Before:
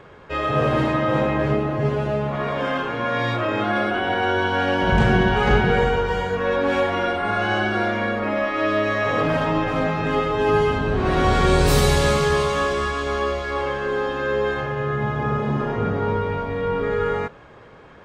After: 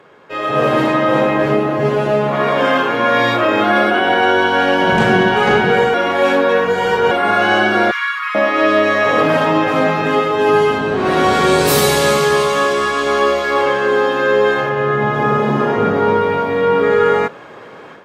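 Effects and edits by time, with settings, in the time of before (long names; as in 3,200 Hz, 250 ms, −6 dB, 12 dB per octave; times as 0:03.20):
0:05.94–0:07.11: reverse
0:07.91–0:08.35: linear-phase brick-wall high-pass 960 Hz
0:14.69–0:15.14: high-shelf EQ 6,900 Hz −7.5 dB
whole clip: high-pass filter 210 Hz 12 dB per octave; parametric band 13,000 Hz +8.5 dB 0.59 octaves; automatic gain control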